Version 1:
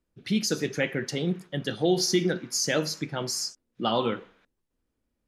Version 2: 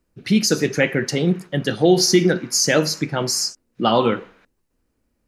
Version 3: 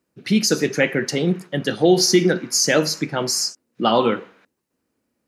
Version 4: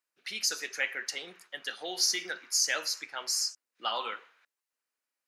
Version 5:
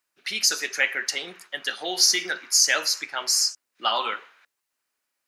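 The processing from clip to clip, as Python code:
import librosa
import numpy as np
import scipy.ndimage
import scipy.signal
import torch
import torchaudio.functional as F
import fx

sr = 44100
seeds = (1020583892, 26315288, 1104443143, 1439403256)

y1 = fx.peak_eq(x, sr, hz=3400.0, db=-7.0, octaves=0.23)
y1 = y1 * 10.0 ** (9.0 / 20.0)
y2 = scipy.signal.sosfilt(scipy.signal.butter(2, 150.0, 'highpass', fs=sr, output='sos'), y1)
y3 = scipy.signal.sosfilt(scipy.signal.butter(2, 1200.0, 'highpass', fs=sr, output='sos'), y2)
y3 = y3 * 10.0 ** (-8.0 / 20.0)
y4 = fx.notch(y3, sr, hz=490.0, q=12.0)
y4 = y4 * 10.0 ** (8.5 / 20.0)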